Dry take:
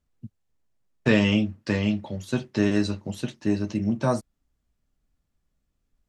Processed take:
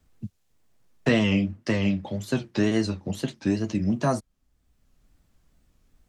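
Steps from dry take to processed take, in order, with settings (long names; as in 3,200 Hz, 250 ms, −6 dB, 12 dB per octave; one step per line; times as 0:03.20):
tape wow and flutter 130 cents
multiband upward and downward compressor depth 40%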